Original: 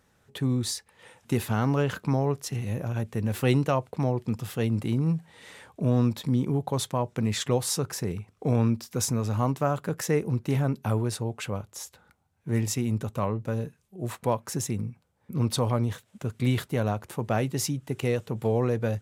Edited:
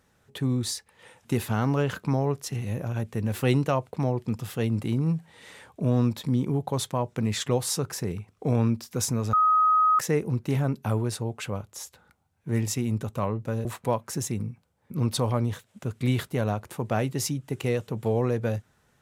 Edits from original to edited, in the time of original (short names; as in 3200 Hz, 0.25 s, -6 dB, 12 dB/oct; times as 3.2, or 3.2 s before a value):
9.33–9.99 bleep 1260 Hz -17 dBFS
13.65–14.04 cut